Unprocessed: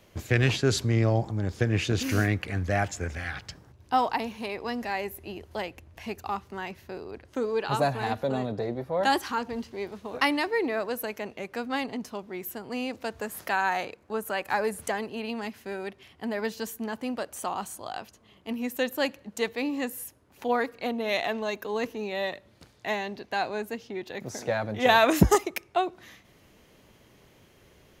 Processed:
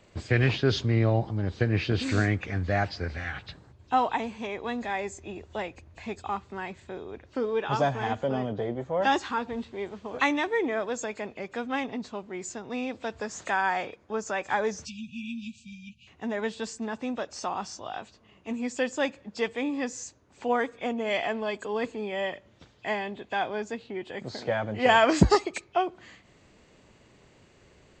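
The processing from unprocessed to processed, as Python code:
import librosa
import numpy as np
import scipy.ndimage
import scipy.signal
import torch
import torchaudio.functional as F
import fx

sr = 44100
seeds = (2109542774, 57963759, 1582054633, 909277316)

y = fx.freq_compress(x, sr, knee_hz=2300.0, ratio=1.5)
y = fx.spec_erase(y, sr, start_s=14.85, length_s=1.22, low_hz=240.0, high_hz=2300.0)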